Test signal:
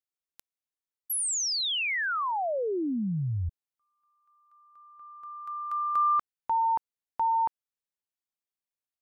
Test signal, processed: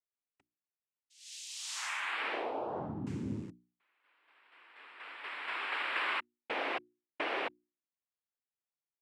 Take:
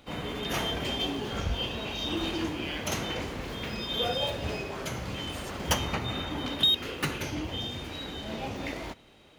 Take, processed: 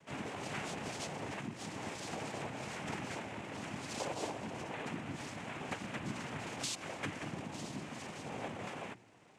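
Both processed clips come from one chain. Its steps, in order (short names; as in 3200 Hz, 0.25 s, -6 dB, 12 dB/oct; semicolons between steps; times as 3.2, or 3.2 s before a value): rattling part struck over -31 dBFS, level -28 dBFS; EQ curve 130 Hz 0 dB, 260 Hz -13 dB, 380 Hz -7 dB, 1200 Hz -2 dB, 5800 Hz -19 dB; compressor 3:1, threshold -38 dBFS; noise vocoder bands 4; notches 60/120/180/240/300/360 Hz; gain +1.5 dB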